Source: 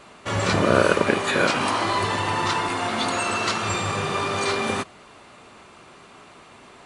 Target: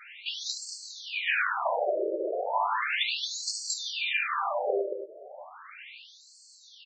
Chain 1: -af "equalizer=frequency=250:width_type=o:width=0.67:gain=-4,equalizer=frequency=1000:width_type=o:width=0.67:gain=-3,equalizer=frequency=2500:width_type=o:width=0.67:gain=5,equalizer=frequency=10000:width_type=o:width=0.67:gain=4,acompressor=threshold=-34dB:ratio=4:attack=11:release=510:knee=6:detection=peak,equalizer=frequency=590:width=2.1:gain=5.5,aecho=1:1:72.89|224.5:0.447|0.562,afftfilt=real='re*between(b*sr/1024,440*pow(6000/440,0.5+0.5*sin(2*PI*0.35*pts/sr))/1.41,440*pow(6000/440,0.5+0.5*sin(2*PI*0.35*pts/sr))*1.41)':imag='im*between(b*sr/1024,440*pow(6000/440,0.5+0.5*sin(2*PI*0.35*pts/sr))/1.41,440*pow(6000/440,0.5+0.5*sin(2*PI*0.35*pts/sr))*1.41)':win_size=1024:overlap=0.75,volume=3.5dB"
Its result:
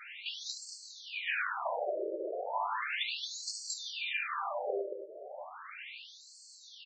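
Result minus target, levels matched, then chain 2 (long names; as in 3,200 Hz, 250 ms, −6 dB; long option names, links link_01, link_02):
downward compressor: peak gain reduction +6.5 dB
-af "equalizer=frequency=250:width_type=o:width=0.67:gain=-4,equalizer=frequency=1000:width_type=o:width=0.67:gain=-3,equalizer=frequency=2500:width_type=o:width=0.67:gain=5,equalizer=frequency=10000:width_type=o:width=0.67:gain=4,acompressor=threshold=-25dB:ratio=4:attack=11:release=510:knee=6:detection=peak,equalizer=frequency=590:width=2.1:gain=5.5,aecho=1:1:72.89|224.5:0.447|0.562,afftfilt=real='re*between(b*sr/1024,440*pow(6000/440,0.5+0.5*sin(2*PI*0.35*pts/sr))/1.41,440*pow(6000/440,0.5+0.5*sin(2*PI*0.35*pts/sr))*1.41)':imag='im*between(b*sr/1024,440*pow(6000/440,0.5+0.5*sin(2*PI*0.35*pts/sr))/1.41,440*pow(6000/440,0.5+0.5*sin(2*PI*0.35*pts/sr))*1.41)':win_size=1024:overlap=0.75,volume=3.5dB"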